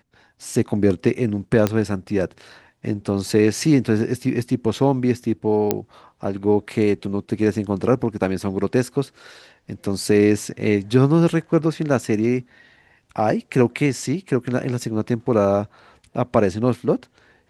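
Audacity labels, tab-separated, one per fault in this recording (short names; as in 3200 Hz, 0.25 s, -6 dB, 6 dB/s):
1.670000	1.670000	pop -6 dBFS
5.710000	5.710000	pop -4 dBFS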